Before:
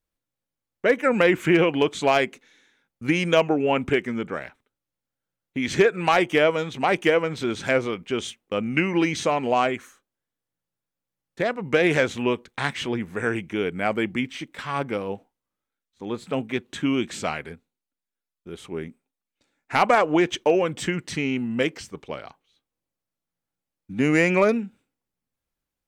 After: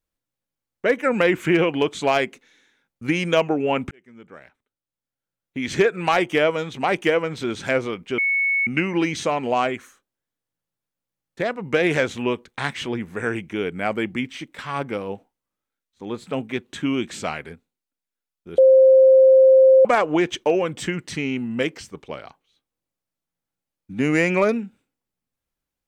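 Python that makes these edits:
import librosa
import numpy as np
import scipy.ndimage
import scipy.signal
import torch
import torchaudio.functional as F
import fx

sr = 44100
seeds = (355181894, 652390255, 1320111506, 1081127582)

y = fx.edit(x, sr, fx.fade_in_span(start_s=3.91, length_s=1.91),
    fx.bleep(start_s=8.18, length_s=0.49, hz=2210.0, db=-17.5),
    fx.bleep(start_s=18.58, length_s=1.27, hz=527.0, db=-8.5), tone=tone)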